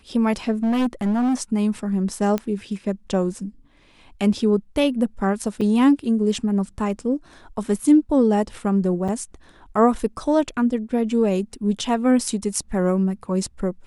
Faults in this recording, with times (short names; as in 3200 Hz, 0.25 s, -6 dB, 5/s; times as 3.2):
0.63–1.35 clipped -17.5 dBFS
2.38 pop -12 dBFS
5.61–5.62 gap 5.2 ms
9.08–9.09 gap 6 ms